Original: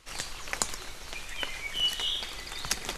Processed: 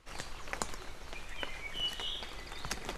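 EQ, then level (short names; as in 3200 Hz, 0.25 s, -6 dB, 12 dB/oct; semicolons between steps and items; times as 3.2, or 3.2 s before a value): high shelf 2300 Hz -10.5 dB; -1.5 dB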